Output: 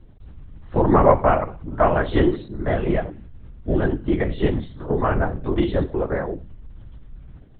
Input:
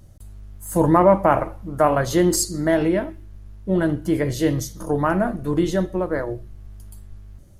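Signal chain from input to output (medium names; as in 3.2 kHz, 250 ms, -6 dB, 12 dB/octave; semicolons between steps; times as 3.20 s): 2.42–2.90 s: ring modulator 59 Hz; LPC vocoder at 8 kHz whisper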